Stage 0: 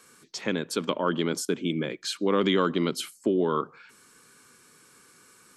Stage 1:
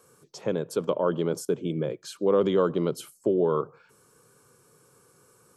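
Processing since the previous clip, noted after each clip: graphic EQ 125/250/500/2000/4000/8000 Hz +8/-8/+7/-12/-8/-4 dB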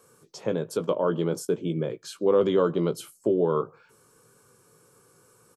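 doubling 18 ms -9.5 dB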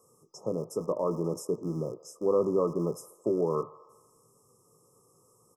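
rattle on loud lows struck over -39 dBFS, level -24 dBFS; feedback echo behind a band-pass 82 ms, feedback 64%, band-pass 1.2 kHz, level -15 dB; FFT band-reject 1.3–5 kHz; trim -4.5 dB

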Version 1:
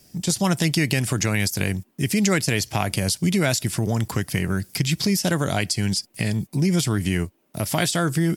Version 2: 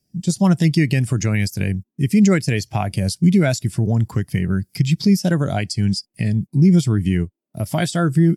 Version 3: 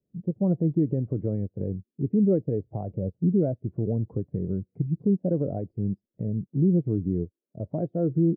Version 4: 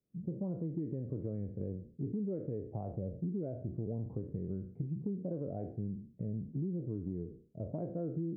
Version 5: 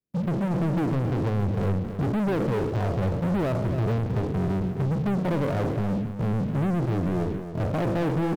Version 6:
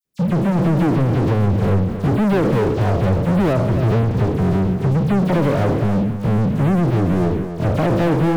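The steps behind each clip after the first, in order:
spectral contrast expander 1.5:1
four-pole ladder low-pass 560 Hz, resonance 60%; dynamic bell 290 Hz, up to +4 dB, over -39 dBFS, Q 3
spectral sustain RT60 0.44 s; compression, threshold -27 dBFS, peak gain reduction 10 dB; trim -7 dB
waveshaping leveller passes 5; delay 273 ms -9.5 dB; trim +4 dB
phase dispersion lows, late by 49 ms, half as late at 3 kHz; trim +8.5 dB

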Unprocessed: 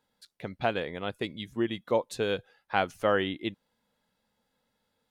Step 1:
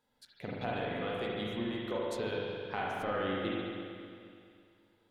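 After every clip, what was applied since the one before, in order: compression, threshold -33 dBFS, peak gain reduction 12 dB; spring tank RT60 2.4 s, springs 38/42 ms, chirp 35 ms, DRR -5.5 dB; trim -3.5 dB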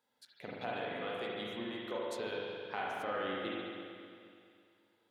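high-pass 360 Hz 6 dB/octave; trim -1.5 dB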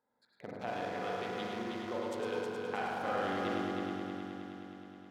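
local Wiener filter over 15 samples; multi-head delay 105 ms, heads first and third, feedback 71%, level -6.5 dB; trim +1 dB

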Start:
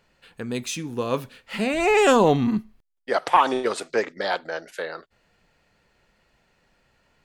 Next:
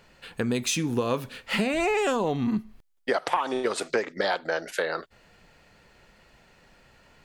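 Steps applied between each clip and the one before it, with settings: compression 8:1, threshold -30 dBFS, peak gain reduction 18 dB; trim +7.5 dB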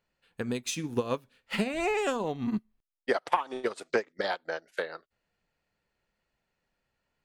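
upward expansion 2.5:1, over -37 dBFS; trim +1.5 dB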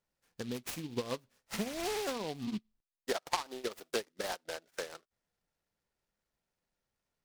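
delay time shaken by noise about 3.2 kHz, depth 0.092 ms; trim -7 dB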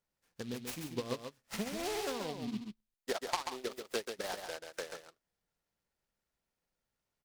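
delay 136 ms -6.5 dB; trim -2 dB

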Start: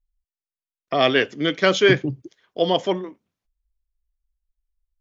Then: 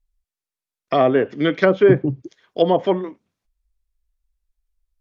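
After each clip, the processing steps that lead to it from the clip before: low-pass that closes with the level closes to 870 Hz, closed at -14 dBFS; band-stop 3 kHz, Q 28; trim +4 dB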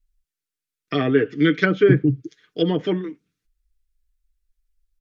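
high-order bell 760 Hz -14.5 dB 1.2 oct; comb 6.6 ms, depth 53%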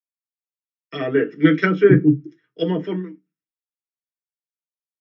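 reverberation RT60 0.15 s, pre-delay 3 ms, DRR 3 dB; three bands expanded up and down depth 70%; trim -8.5 dB

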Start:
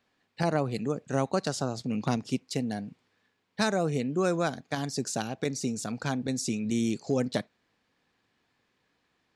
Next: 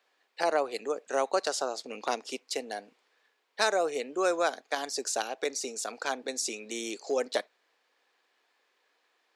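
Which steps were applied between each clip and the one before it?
high-pass 410 Hz 24 dB/octave; trim +2.5 dB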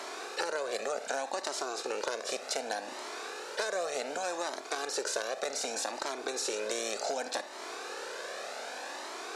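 spectral levelling over time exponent 0.4; compression 5:1, threshold -30 dBFS, peak gain reduction 12 dB; Shepard-style flanger rising 0.66 Hz; trim +3.5 dB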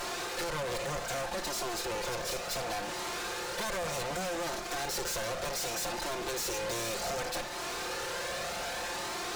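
comb filter that takes the minimum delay 5.7 ms; waveshaping leveller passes 3; saturation -30.5 dBFS, distortion -10 dB; trim -1.5 dB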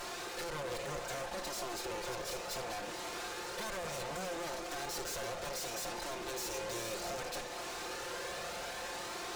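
repeats whose band climbs or falls 239 ms, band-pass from 370 Hz, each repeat 1.4 oct, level -2.5 dB; trim -6 dB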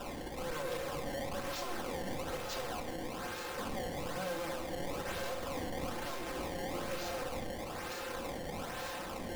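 decimation with a swept rate 20×, swing 160% 1.1 Hz; simulated room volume 3200 m³, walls furnished, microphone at 2.1 m; trim -1 dB

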